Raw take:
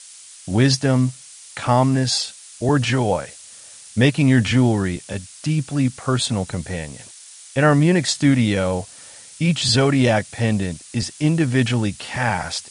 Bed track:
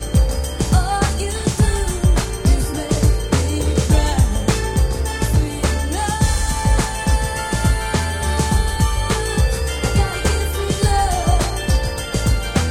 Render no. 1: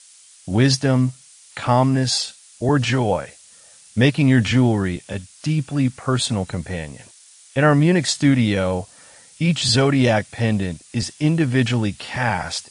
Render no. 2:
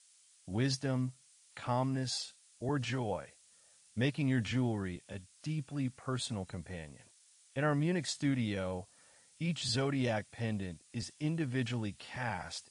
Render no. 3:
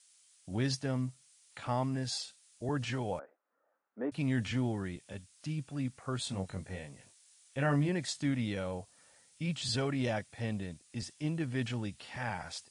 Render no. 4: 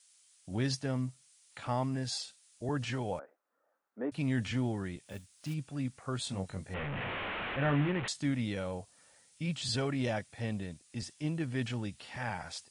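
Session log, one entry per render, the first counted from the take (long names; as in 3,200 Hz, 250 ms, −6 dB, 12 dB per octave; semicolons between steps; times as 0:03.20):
noise reduction from a noise print 6 dB
level −16.5 dB
0:03.19–0:04.12: Chebyshev band-pass filter 270–1,400 Hz, order 3; 0:06.24–0:07.89: double-tracking delay 21 ms −4.5 dB
0:05.05–0:05.54: floating-point word with a short mantissa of 2 bits; 0:06.74–0:08.08: linear delta modulator 16 kbit/s, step −30.5 dBFS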